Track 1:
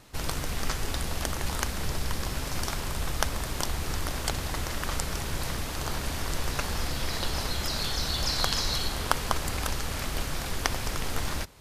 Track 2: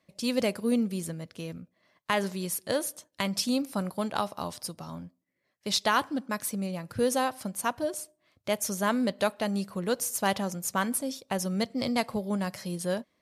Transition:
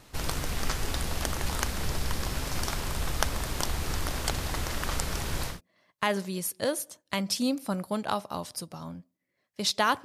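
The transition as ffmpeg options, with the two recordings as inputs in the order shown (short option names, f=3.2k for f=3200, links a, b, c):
-filter_complex "[0:a]apad=whole_dur=10.04,atrim=end=10.04,atrim=end=5.61,asetpts=PTS-STARTPTS[a];[1:a]atrim=start=1.5:end=6.11,asetpts=PTS-STARTPTS[b];[a][b]acrossfade=d=0.18:c1=tri:c2=tri"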